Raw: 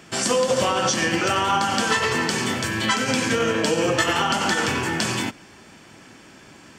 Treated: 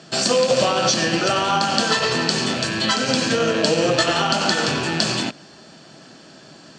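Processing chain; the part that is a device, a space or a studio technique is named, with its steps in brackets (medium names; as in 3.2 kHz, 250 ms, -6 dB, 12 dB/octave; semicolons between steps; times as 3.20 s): car door speaker with a rattle (rattle on loud lows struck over -38 dBFS, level -18 dBFS; cabinet simulation 92–8000 Hz, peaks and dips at 99 Hz -9 dB, 150 Hz +6 dB, 640 Hz +7 dB, 950 Hz -4 dB, 2.2 kHz -9 dB, 4.3 kHz +10 dB); trim +1.5 dB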